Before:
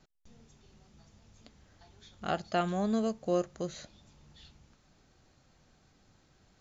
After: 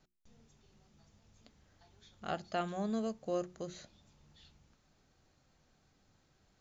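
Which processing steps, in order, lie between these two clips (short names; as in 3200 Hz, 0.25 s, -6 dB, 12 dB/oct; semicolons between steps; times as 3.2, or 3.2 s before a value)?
notches 60/120/180/240/300/360 Hz; gain -5.5 dB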